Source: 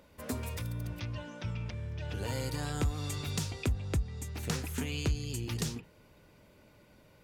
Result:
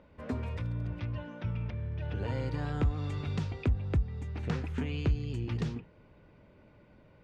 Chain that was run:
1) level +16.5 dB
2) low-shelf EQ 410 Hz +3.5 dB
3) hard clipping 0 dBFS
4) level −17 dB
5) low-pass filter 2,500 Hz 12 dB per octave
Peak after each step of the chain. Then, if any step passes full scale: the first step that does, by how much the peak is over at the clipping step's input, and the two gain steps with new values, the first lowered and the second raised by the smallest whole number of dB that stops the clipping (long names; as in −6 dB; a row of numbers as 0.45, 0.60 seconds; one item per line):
−6.5, −3.0, −3.0, −20.0, −20.0 dBFS
no step passes full scale